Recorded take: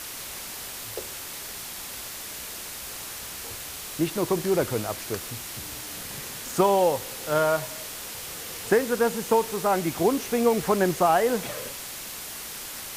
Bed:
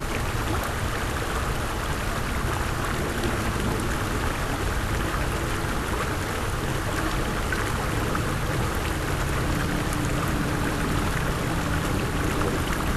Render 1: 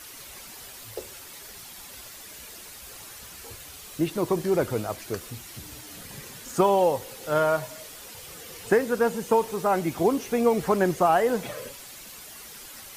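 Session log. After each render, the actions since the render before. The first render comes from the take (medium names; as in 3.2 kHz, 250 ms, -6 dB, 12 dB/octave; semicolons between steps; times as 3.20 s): noise reduction 9 dB, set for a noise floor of -38 dBFS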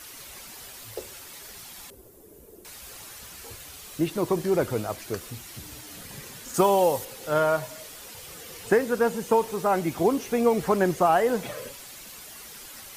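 1.90–2.65 s: FFT filter 240 Hz 0 dB, 410 Hz +9 dB, 620 Hz -5 dB, 1.3 kHz -16 dB, 2.1 kHz -22 dB, 4.5 kHz -23 dB, 12 kHz -9 dB; 6.54–7.05 s: treble shelf 5.2 kHz +8 dB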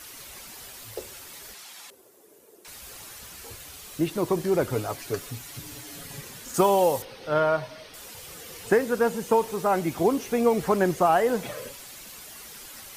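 1.54–2.68 s: frequency weighting A; 4.72–6.21 s: comb 7.1 ms, depth 56%; 7.02–7.94 s: Savitzky-Golay filter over 15 samples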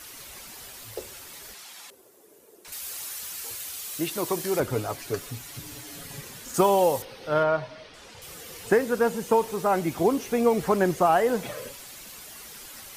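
2.72–4.60 s: tilt EQ +2.5 dB/octave; 7.43–8.22 s: distance through air 85 m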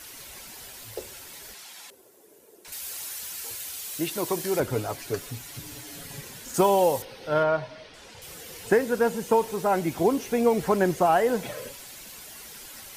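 band-stop 1.2 kHz, Q 12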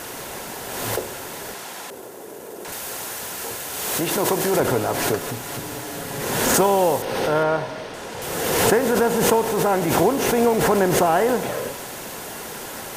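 spectral levelling over time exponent 0.6; swell ahead of each attack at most 31 dB/s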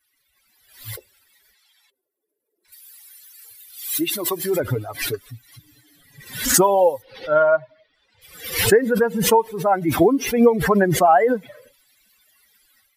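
expander on every frequency bin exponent 3; level rider gain up to 10.5 dB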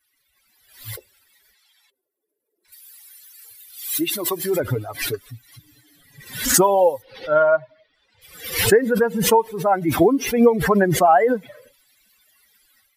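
no audible change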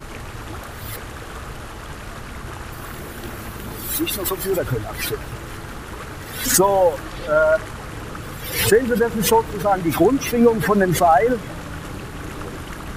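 add bed -6.5 dB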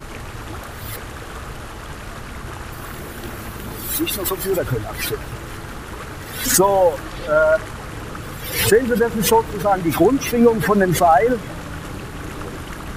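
trim +1 dB; peak limiter -2 dBFS, peak gain reduction 0.5 dB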